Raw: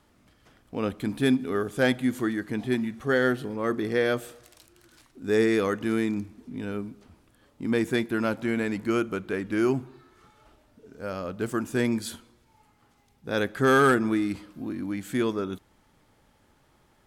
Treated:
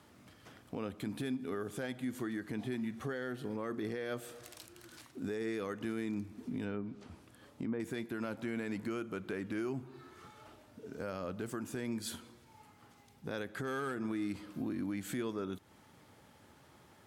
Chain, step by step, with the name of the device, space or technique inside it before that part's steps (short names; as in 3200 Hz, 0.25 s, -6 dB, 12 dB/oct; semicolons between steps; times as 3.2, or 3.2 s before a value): 6.64–7.8 treble ducked by the level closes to 1400 Hz, closed at -25.5 dBFS; podcast mastering chain (HPF 74 Hz 24 dB/oct; compressor 3:1, threshold -39 dBFS, peak gain reduction 17 dB; limiter -31 dBFS, peak gain reduction 7 dB; gain +3 dB; MP3 96 kbps 48000 Hz)